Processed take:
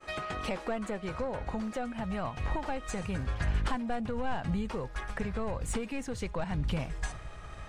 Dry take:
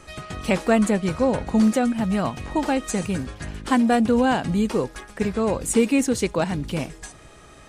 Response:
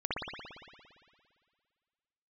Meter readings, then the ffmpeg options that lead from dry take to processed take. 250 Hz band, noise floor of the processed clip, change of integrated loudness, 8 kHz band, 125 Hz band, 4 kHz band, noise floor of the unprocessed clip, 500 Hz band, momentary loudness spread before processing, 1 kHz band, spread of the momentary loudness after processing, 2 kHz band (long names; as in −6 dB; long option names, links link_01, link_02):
−15.5 dB, −45 dBFS, −13.0 dB, −15.0 dB, −6.5 dB, −10.0 dB, −47 dBFS, −13.5 dB, 12 LU, −10.5 dB, 4 LU, −9.5 dB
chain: -filter_complex "[0:a]asplit=2[link_01][link_02];[link_02]highpass=frequency=720:poles=1,volume=15dB,asoftclip=type=tanh:threshold=-6.5dB[link_03];[link_01][link_03]amix=inputs=2:normalize=0,lowpass=frequency=1400:poles=1,volume=-6dB,agate=range=-33dB:threshold=-38dB:ratio=3:detection=peak,acompressor=threshold=-34dB:ratio=4,asubboost=boost=12:cutoff=90"